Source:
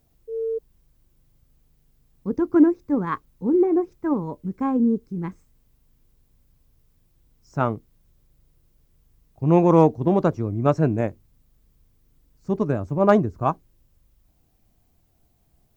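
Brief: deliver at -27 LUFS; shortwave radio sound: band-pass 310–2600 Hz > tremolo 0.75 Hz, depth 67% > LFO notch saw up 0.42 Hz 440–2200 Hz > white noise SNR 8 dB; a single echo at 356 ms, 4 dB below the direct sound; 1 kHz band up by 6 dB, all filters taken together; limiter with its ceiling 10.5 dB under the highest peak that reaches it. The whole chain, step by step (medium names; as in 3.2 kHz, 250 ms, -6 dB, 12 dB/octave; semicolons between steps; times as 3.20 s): peaking EQ 1 kHz +7.5 dB; peak limiter -10 dBFS; band-pass 310–2600 Hz; delay 356 ms -4 dB; tremolo 0.75 Hz, depth 67%; LFO notch saw up 0.42 Hz 440–2200 Hz; white noise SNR 8 dB; trim +5 dB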